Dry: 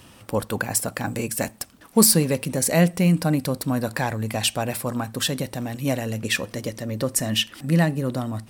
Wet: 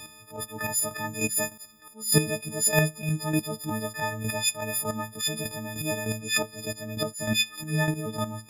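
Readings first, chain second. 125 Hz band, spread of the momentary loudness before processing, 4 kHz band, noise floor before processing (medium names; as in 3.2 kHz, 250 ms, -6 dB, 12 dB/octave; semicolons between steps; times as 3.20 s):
-6.5 dB, 10 LU, -3.5 dB, -50 dBFS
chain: partials quantised in pitch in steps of 6 st; treble shelf 6.4 kHz -5 dB; square tremolo 3.3 Hz, depth 60%, duty 20%; attacks held to a fixed rise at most 150 dB/s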